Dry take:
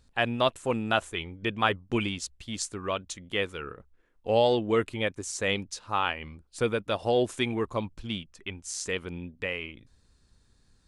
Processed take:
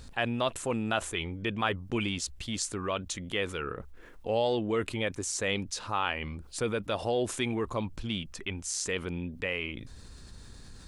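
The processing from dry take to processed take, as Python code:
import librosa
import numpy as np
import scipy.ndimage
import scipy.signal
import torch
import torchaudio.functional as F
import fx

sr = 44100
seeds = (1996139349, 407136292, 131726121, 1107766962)

y = fx.env_flatten(x, sr, amount_pct=50)
y = y * 10.0 ** (-6.0 / 20.0)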